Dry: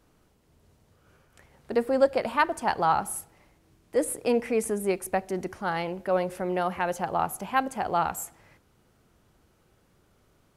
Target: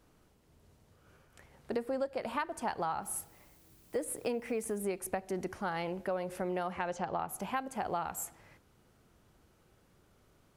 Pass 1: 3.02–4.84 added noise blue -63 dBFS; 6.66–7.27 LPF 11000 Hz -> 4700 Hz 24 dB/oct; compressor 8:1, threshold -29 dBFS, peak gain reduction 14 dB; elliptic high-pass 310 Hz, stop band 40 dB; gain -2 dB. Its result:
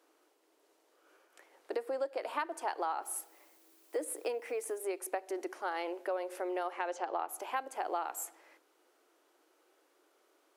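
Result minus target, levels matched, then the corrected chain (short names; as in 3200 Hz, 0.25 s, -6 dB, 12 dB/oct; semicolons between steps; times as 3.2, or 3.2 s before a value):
250 Hz band -5.0 dB
3.02–4.84 added noise blue -63 dBFS; 6.66–7.27 LPF 11000 Hz -> 4700 Hz 24 dB/oct; compressor 8:1, threshold -29 dBFS, peak gain reduction 14 dB; gain -2 dB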